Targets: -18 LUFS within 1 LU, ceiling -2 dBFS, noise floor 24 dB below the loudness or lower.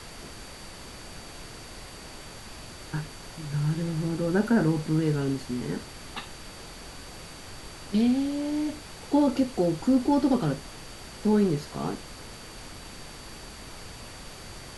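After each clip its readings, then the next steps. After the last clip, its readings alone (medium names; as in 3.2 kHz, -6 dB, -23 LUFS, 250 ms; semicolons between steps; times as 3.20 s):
steady tone 4.6 kHz; tone level -51 dBFS; noise floor -44 dBFS; noise floor target -51 dBFS; loudness -27.0 LUFS; peak level -12.0 dBFS; loudness target -18.0 LUFS
-> band-stop 4.6 kHz, Q 30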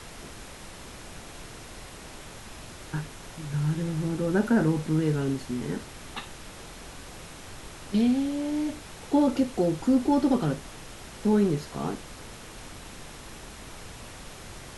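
steady tone not found; noise floor -44 dBFS; noise floor target -51 dBFS
-> noise print and reduce 7 dB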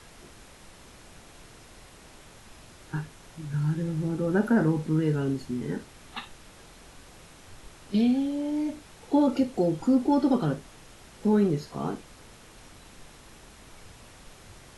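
noise floor -51 dBFS; loudness -27.0 LUFS; peak level -12.5 dBFS; loudness target -18.0 LUFS
-> trim +9 dB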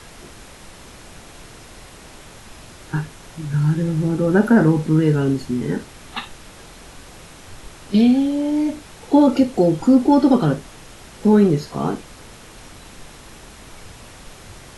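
loudness -18.0 LUFS; peak level -3.5 dBFS; noise floor -42 dBFS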